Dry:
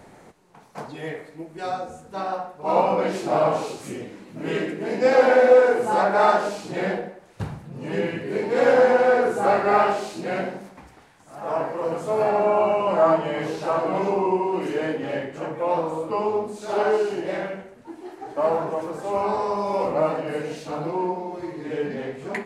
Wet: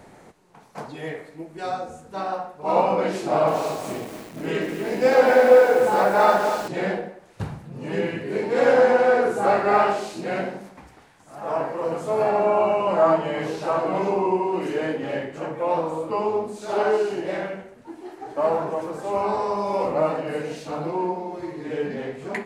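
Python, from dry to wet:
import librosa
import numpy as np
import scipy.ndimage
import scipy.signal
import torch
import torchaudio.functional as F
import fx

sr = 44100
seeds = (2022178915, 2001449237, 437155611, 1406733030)

y = fx.echo_crushed(x, sr, ms=243, feedback_pct=55, bits=6, wet_db=-8.0, at=(3.23, 6.68))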